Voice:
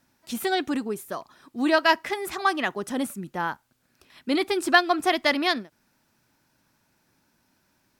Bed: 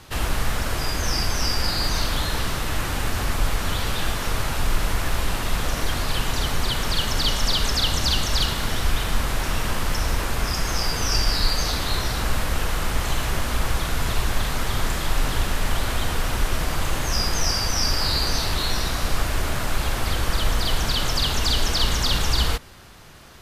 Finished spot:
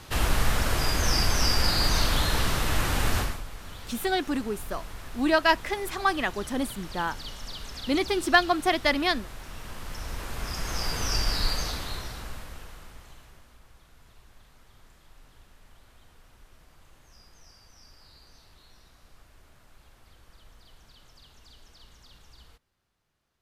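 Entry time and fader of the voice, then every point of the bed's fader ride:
3.60 s, −1.5 dB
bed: 0:03.19 −0.5 dB
0:03.44 −17.5 dB
0:09.49 −17.5 dB
0:10.92 −5.5 dB
0:11.52 −5.5 dB
0:13.61 −32.5 dB

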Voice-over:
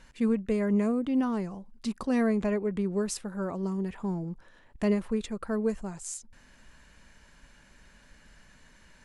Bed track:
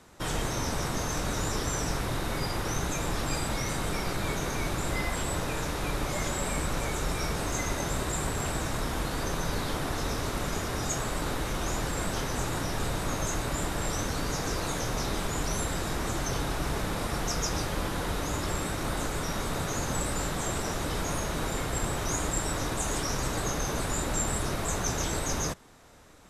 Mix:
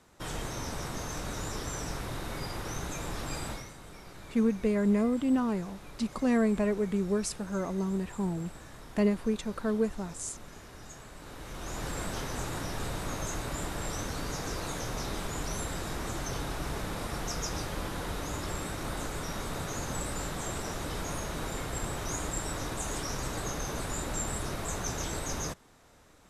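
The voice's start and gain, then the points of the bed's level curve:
4.15 s, 0.0 dB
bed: 0:03.50 −6 dB
0:03.73 −17.5 dB
0:11.15 −17.5 dB
0:11.88 −4.5 dB

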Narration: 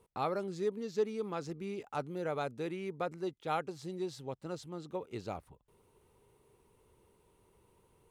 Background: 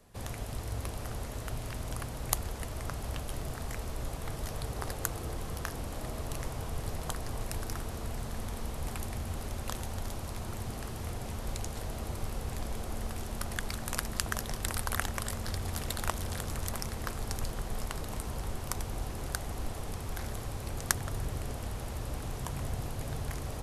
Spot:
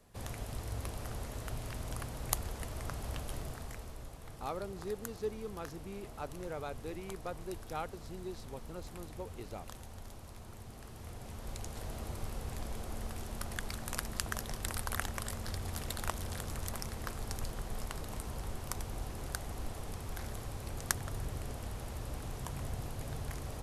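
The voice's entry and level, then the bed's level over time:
4.25 s, −5.5 dB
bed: 0:03.34 −3 dB
0:04.13 −11.5 dB
0:10.71 −11.5 dB
0:11.89 −4 dB

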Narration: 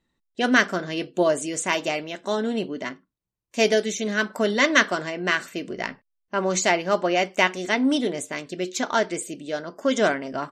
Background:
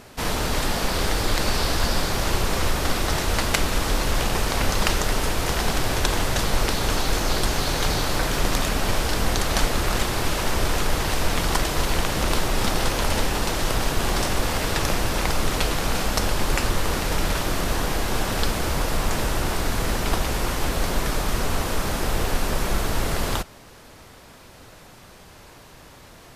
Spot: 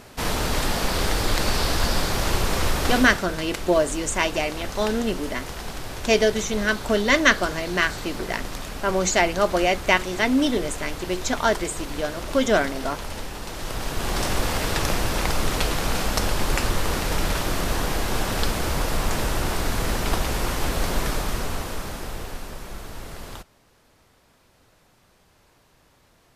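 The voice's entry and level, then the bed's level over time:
2.50 s, +1.0 dB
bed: 0:02.97 0 dB
0:03.25 −10.5 dB
0:13.42 −10.5 dB
0:14.30 −0.5 dB
0:21.06 −0.5 dB
0:22.61 −13 dB

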